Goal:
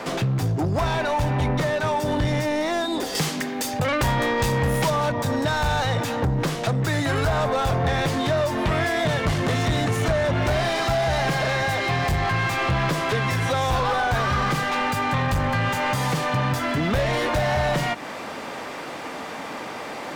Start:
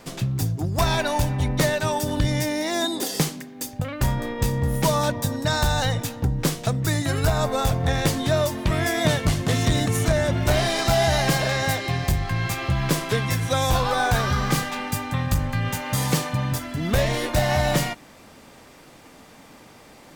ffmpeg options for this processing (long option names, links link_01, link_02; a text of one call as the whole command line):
ffmpeg -i in.wav -filter_complex "[0:a]acrossover=split=140[link_01][link_02];[link_02]acompressor=threshold=-31dB:ratio=6[link_03];[link_01][link_03]amix=inputs=2:normalize=0,asetnsamples=nb_out_samples=441:pad=0,asendcmd='3.15 lowpass f 3600;4.9 lowpass f 1600',asplit=2[link_04][link_05];[link_05]highpass=frequency=720:poles=1,volume=27dB,asoftclip=type=tanh:threshold=-12.5dB[link_06];[link_04][link_06]amix=inputs=2:normalize=0,lowpass=frequency=1200:poles=1,volume=-6dB" out.wav